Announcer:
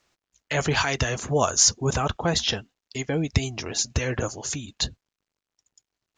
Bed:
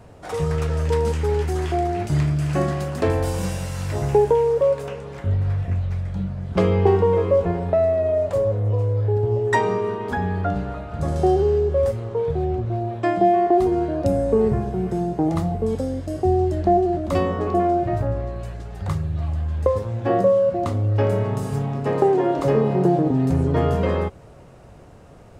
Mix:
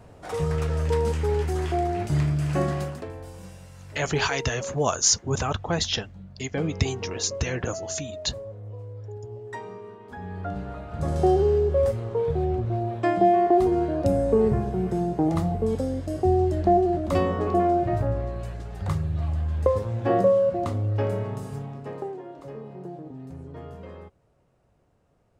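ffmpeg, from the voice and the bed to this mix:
-filter_complex "[0:a]adelay=3450,volume=-2dB[a];[1:a]volume=12.5dB,afade=t=out:st=2.83:d=0.22:silence=0.188365,afade=t=in:st=10.08:d=1.15:silence=0.16788,afade=t=out:st=20.21:d=2.02:silence=0.11885[b];[a][b]amix=inputs=2:normalize=0"

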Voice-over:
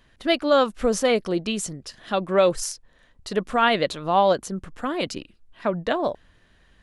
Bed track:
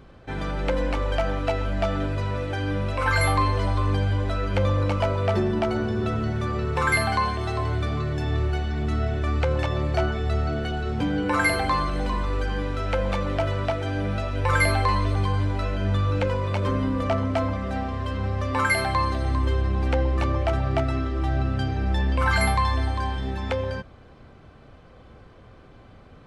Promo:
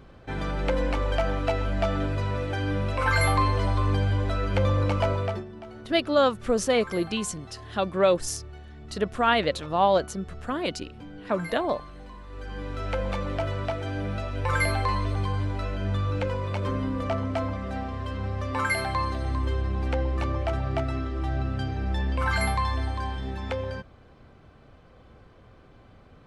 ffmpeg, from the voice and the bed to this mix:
-filter_complex "[0:a]adelay=5650,volume=-2.5dB[a];[1:a]volume=13dB,afade=t=out:st=5.13:d=0.32:silence=0.141254,afade=t=in:st=12.28:d=0.58:silence=0.199526[b];[a][b]amix=inputs=2:normalize=0"

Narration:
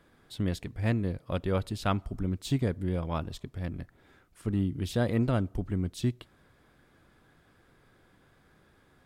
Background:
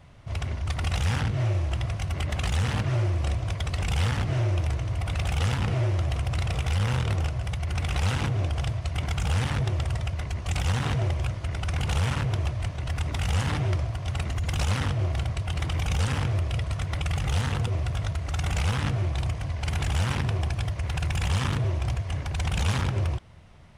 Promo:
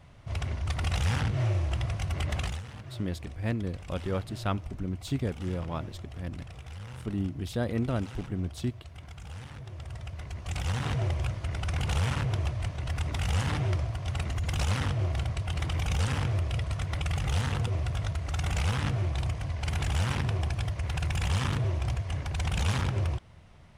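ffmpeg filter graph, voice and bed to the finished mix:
-filter_complex "[0:a]adelay=2600,volume=-2.5dB[a];[1:a]volume=12.5dB,afade=t=out:st=2.37:d=0.25:silence=0.177828,afade=t=in:st=9.65:d=1.5:silence=0.188365[b];[a][b]amix=inputs=2:normalize=0"

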